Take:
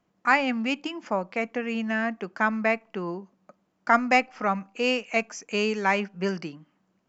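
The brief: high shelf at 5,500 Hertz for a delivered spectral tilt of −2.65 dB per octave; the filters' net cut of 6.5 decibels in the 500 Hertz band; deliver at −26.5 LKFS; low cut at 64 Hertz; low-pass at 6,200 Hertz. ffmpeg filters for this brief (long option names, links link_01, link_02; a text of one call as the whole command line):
ffmpeg -i in.wav -af "highpass=64,lowpass=6200,equalizer=frequency=500:width_type=o:gain=-8.5,highshelf=frequency=5500:gain=-8.5,volume=2dB" out.wav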